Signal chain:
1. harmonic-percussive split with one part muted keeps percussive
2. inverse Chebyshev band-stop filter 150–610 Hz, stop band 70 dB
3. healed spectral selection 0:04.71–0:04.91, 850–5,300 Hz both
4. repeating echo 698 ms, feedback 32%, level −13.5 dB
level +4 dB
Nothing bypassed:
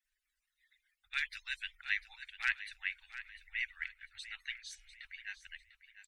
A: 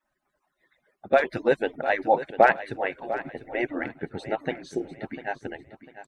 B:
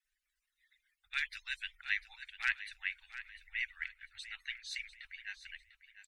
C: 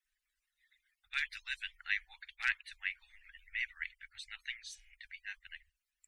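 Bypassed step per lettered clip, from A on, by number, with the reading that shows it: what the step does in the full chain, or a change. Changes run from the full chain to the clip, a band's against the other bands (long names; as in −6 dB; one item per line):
2, change in integrated loudness +13.0 LU
3, change in momentary loudness spread −2 LU
4, change in momentary loudness spread +2 LU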